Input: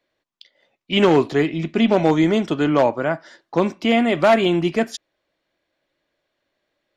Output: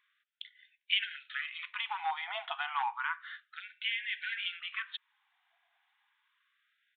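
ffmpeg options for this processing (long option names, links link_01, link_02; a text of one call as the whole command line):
ffmpeg -i in.wav -af "acompressor=threshold=-26dB:ratio=6,highpass=frequency=400:width_type=q:width=4.9,aresample=8000,aresample=44100,afftfilt=real='re*gte(b*sr/1024,680*pow(1500/680,0.5+0.5*sin(2*PI*0.31*pts/sr)))':imag='im*gte(b*sr/1024,680*pow(1500/680,0.5+0.5*sin(2*PI*0.31*pts/sr)))':win_size=1024:overlap=0.75,volume=2.5dB" out.wav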